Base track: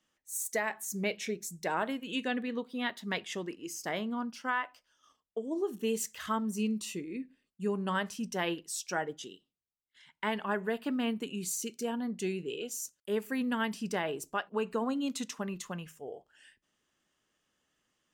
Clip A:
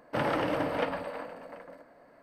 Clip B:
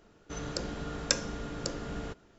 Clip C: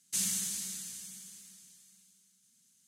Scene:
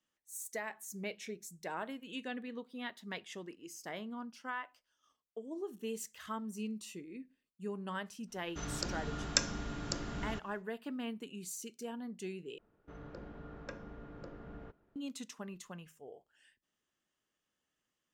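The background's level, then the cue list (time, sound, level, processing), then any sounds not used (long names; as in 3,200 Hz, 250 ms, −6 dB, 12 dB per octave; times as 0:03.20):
base track −8.5 dB
0:08.26: mix in B −1.5 dB, fades 0.10 s + parametric band 490 Hz −9 dB 0.44 octaves
0:12.58: overwrite with B −11 dB + low-pass filter 1,700 Hz
not used: A, C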